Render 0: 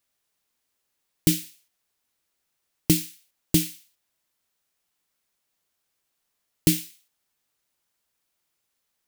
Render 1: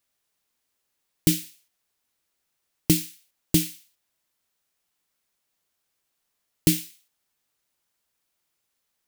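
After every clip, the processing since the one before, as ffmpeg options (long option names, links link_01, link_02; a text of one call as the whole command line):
ffmpeg -i in.wav -af anull out.wav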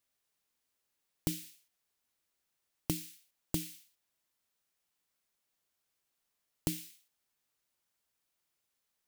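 ffmpeg -i in.wav -af "acompressor=threshold=-25dB:ratio=6,volume=-5.5dB" out.wav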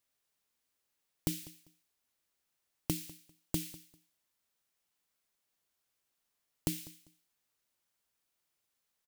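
ffmpeg -i in.wav -af "aecho=1:1:198|396:0.1|0.022" out.wav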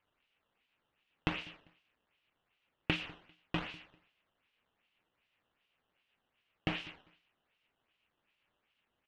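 ffmpeg -i in.wav -af "acrusher=samples=11:mix=1:aa=0.000001:lfo=1:lforange=17.6:lforate=2.6,lowpass=frequency=2800:width_type=q:width=4.5,volume=-1.5dB" out.wav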